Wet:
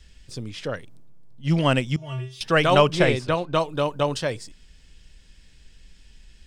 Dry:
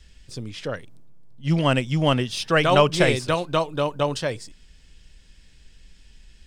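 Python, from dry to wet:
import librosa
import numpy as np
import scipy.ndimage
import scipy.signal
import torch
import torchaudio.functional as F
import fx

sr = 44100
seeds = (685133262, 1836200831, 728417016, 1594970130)

y = fx.comb_fb(x, sr, f0_hz=130.0, decay_s=0.32, harmonics='odd', damping=0.0, mix_pct=100, at=(1.96, 2.41))
y = fx.lowpass(y, sr, hz=fx.line((2.92, 4100.0), (3.54, 2100.0)), slope=6, at=(2.92, 3.54), fade=0.02)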